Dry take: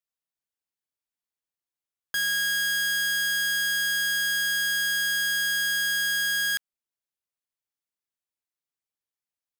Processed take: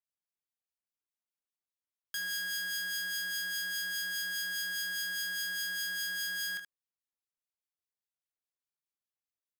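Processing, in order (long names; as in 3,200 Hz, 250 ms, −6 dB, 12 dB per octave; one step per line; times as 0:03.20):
two-band tremolo in antiphase 4.9 Hz, crossover 1,900 Hz
ambience of single reflections 23 ms −7 dB, 76 ms −10 dB
level −6.5 dB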